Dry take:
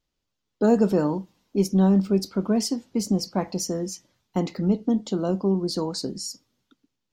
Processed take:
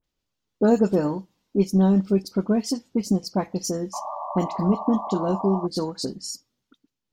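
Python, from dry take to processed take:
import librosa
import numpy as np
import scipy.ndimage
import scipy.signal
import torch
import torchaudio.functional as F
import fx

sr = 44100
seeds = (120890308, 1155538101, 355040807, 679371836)

y = fx.transient(x, sr, attack_db=2, sustain_db=-5)
y = fx.dispersion(y, sr, late='highs', ms=42.0, hz=2200.0)
y = fx.spec_paint(y, sr, seeds[0], shape='noise', start_s=3.93, length_s=1.74, low_hz=570.0, high_hz=1200.0, level_db=-32.0)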